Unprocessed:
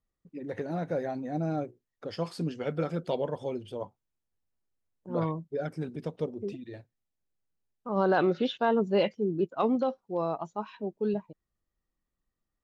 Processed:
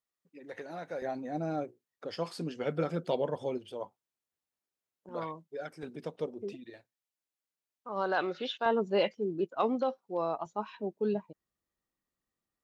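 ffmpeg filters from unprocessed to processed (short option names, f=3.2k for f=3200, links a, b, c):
-af "asetnsamples=n=441:p=0,asendcmd='1.02 highpass f 320;2.59 highpass f 140;3.58 highpass f 470;5.09 highpass f 1000;5.83 highpass f 400;6.7 highpass f 1000;8.66 highpass f 400;10.46 highpass f 190',highpass=f=1.1k:p=1"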